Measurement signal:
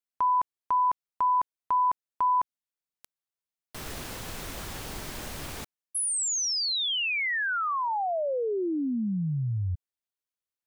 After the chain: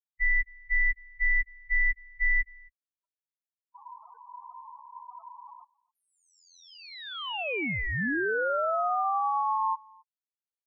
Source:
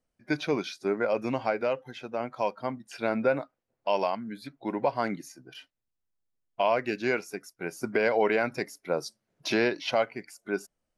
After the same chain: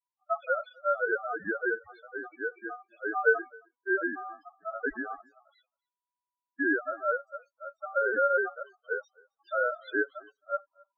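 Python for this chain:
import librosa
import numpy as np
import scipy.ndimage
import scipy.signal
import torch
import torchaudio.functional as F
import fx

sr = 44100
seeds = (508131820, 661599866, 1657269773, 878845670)

p1 = fx.envelope_sharpen(x, sr, power=1.5)
p2 = scipy.signal.sosfilt(scipy.signal.butter(2, 1900.0, 'lowpass', fs=sr, output='sos'), p1)
p3 = fx.spec_topn(p2, sr, count=2)
p4 = p3 * np.sin(2.0 * np.pi * 980.0 * np.arange(len(p3)) / sr)
p5 = p4 + fx.echo_single(p4, sr, ms=267, db=-23.5, dry=0)
p6 = fx.band_widen(p5, sr, depth_pct=40)
y = p6 * librosa.db_to_amplitude(4.0)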